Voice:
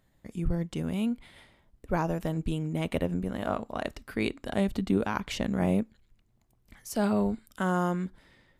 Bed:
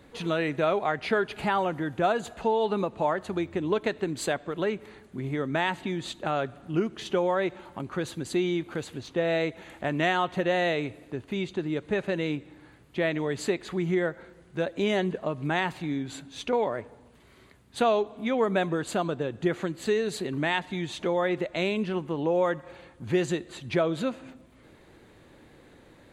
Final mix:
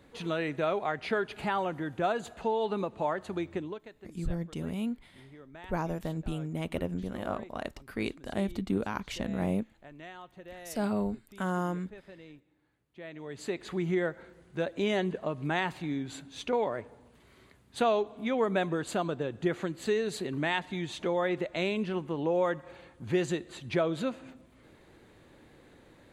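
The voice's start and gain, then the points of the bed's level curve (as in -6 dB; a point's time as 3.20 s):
3.80 s, -4.0 dB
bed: 3.58 s -4.5 dB
3.85 s -21.5 dB
12.90 s -21.5 dB
13.67 s -3 dB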